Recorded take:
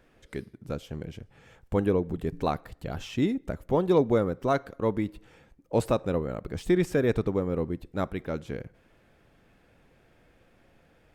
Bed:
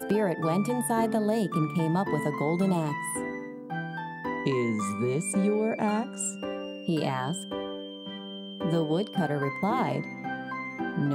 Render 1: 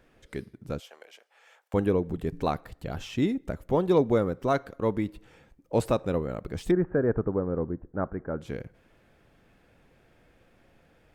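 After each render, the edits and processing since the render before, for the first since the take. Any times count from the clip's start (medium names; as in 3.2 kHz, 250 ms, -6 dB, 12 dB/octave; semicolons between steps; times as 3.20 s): 0.80–1.74 s: high-pass 610 Hz 24 dB/octave; 6.71–8.41 s: elliptic low-pass 1.6 kHz, stop band 80 dB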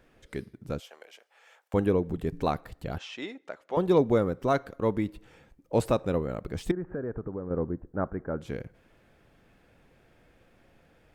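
2.98–3.77 s: band-pass 640–5300 Hz; 6.71–7.51 s: compression 2.5:1, threshold -34 dBFS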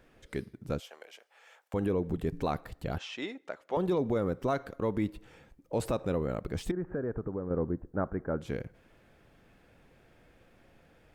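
peak limiter -20 dBFS, peak gain reduction 9 dB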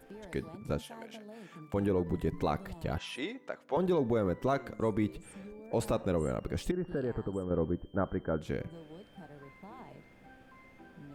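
add bed -23 dB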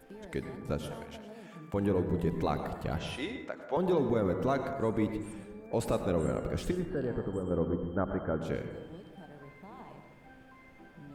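plate-style reverb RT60 1.1 s, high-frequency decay 0.35×, pre-delay 85 ms, DRR 6.5 dB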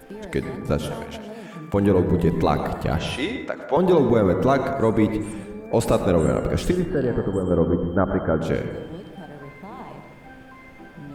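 trim +11 dB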